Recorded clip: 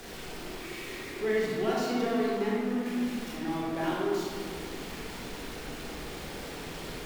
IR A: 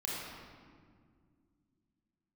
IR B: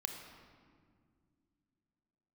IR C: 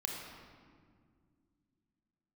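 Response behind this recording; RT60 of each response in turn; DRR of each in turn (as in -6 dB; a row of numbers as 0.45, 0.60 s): A; 2.0, 1.9, 2.0 s; -6.0, 4.0, -0.5 dB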